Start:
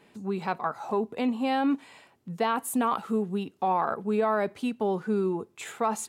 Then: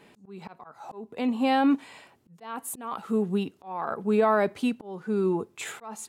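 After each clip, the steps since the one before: auto swell 0.509 s; gain +3.5 dB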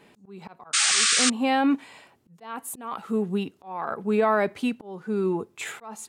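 dynamic EQ 2100 Hz, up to +4 dB, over -44 dBFS, Q 1.5; painted sound noise, 0.73–1.3, 1100–9300 Hz -21 dBFS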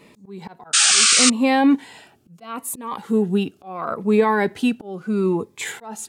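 cascading phaser falling 0.76 Hz; gain +7 dB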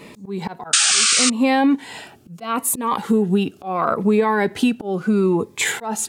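compressor 4:1, threshold -24 dBFS, peak gain reduction 12 dB; gain +9 dB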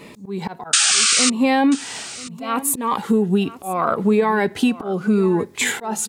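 echo 0.986 s -17.5 dB

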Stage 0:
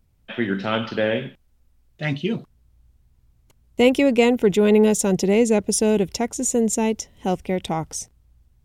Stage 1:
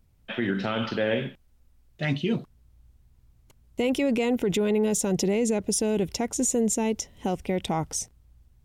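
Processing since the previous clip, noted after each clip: limiter -16 dBFS, peak gain reduction 11.5 dB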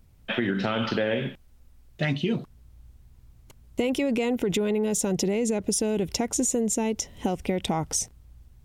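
compressor, threshold -28 dBFS, peak gain reduction 8 dB; gain +6 dB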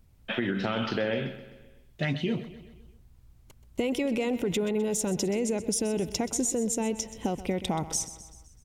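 feedback echo 0.128 s, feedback 54%, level -14.5 dB; gain -3 dB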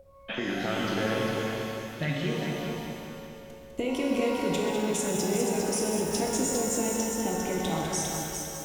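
multi-head echo 0.201 s, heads first and second, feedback 48%, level -7.5 dB; whine 550 Hz -44 dBFS; shimmer reverb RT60 1.6 s, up +12 st, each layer -8 dB, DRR 0.5 dB; gain -3.5 dB

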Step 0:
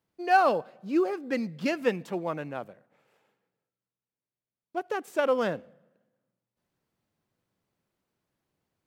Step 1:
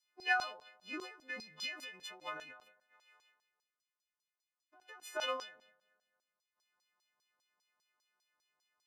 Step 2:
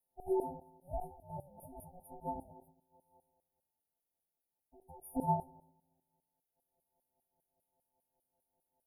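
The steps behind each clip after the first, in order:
frequency quantiser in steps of 3 st; LFO band-pass saw down 5 Hz 900–5600 Hz; ending taper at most 110 dB/s; gain +4 dB
ring modulator 360 Hz; brick-wall FIR band-stop 920–9400 Hz; gain +10 dB

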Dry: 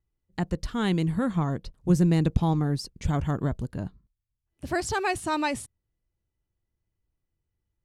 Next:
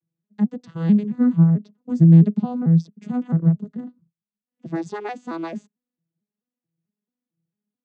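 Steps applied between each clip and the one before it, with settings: arpeggiated vocoder major triad, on E3, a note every 0.221 s; tone controls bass +8 dB, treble 0 dB; gain +2.5 dB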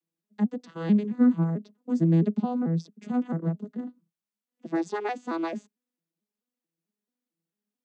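HPF 230 Hz 24 dB/oct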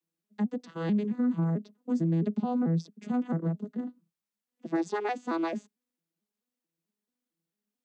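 limiter -20.5 dBFS, peak gain reduction 9 dB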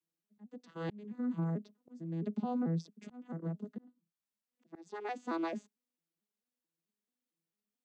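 low shelf 150 Hz -3.5 dB; auto swell 0.473 s; gain -5 dB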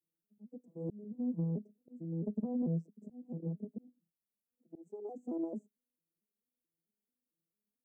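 inverse Chebyshev band-stop 1400–4300 Hz, stop band 60 dB; Doppler distortion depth 0.25 ms

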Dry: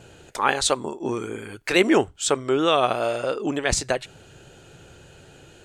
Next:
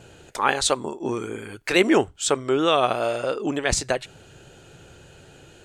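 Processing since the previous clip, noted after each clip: nothing audible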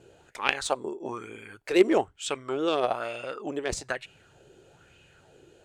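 added harmonics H 3 -14 dB, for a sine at -1.5 dBFS; LFO bell 1.1 Hz 360–2700 Hz +12 dB; gain -4 dB

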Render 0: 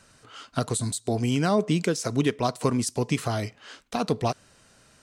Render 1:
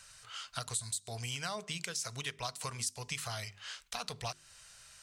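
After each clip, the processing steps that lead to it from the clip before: passive tone stack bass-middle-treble 10-0-10; notches 50/100/150/200/250/300/350/400 Hz; compressor 2:1, threshold -46 dBFS, peak gain reduction 11.5 dB; gain +5 dB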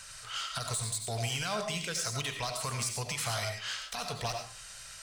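limiter -29 dBFS, peak gain reduction 10.5 dB; soft clip -34.5 dBFS, distortion -16 dB; reverb RT60 0.40 s, pre-delay 50 ms, DRR 4 dB; gain +8 dB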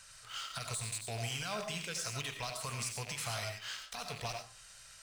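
rattling part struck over -47 dBFS, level -31 dBFS; in parallel at -8 dB: sample gate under -37 dBFS; on the sum: gain -8 dB

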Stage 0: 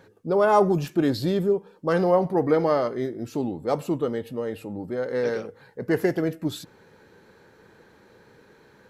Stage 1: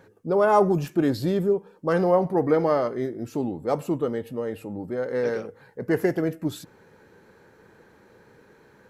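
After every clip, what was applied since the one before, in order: bell 3900 Hz -5 dB 0.92 oct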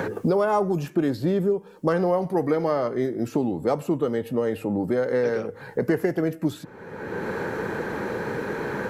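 three-band squash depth 100%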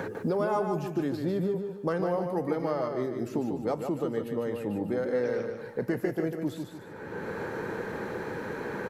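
feedback echo 0.149 s, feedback 38%, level -6 dB; gain -7 dB

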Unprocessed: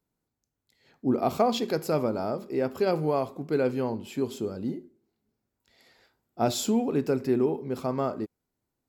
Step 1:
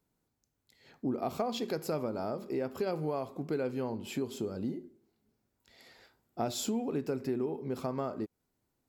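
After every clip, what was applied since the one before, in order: compressor 3:1, threshold -36 dBFS, peak gain reduction 13.5 dB; gain +2.5 dB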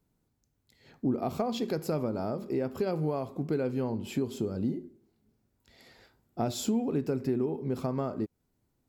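low shelf 280 Hz +8.5 dB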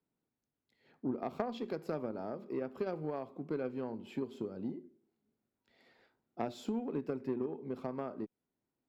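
three-band isolator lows -15 dB, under 170 Hz, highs -14 dB, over 3800 Hz; added harmonics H 3 -15 dB, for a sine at -16.5 dBFS; gain -1.5 dB

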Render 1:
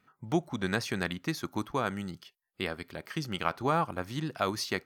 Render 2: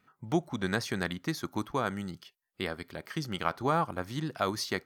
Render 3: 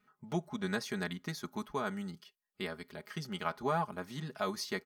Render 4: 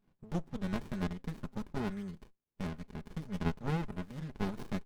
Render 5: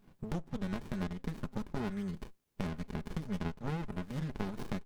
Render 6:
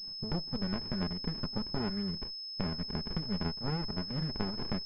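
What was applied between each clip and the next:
dynamic EQ 2600 Hz, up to -6 dB, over -56 dBFS, Q 6
comb 4.8 ms, depth 79%; gain -7 dB
running maximum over 65 samples
compressor 6:1, threshold -45 dBFS, peak gain reduction 17.5 dB; gain +11 dB
pulse-width modulation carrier 5200 Hz; gain +2 dB

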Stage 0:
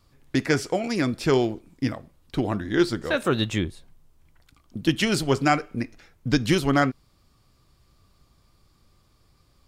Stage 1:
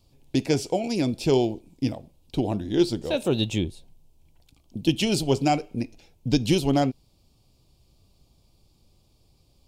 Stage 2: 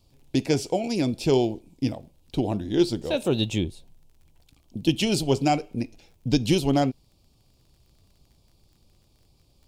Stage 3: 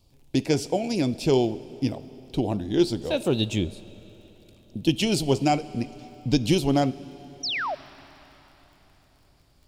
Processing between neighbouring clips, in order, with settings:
band shelf 1500 Hz -15 dB 1.1 oct
crackle 30/s -49 dBFS
painted sound fall, 7.43–7.75, 550–6100 Hz -28 dBFS; reverb RT60 4.2 s, pre-delay 25 ms, DRR 17.5 dB

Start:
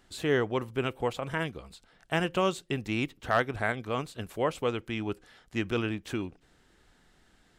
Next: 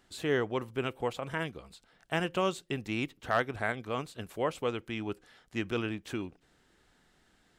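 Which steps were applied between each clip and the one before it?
low shelf 75 Hz -6 dB; gain -2.5 dB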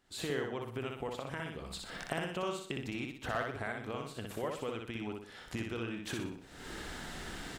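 recorder AGC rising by 55 dB/s; feedback echo 61 ms, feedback 42%, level -3.5 dB; gain -8.5 dB

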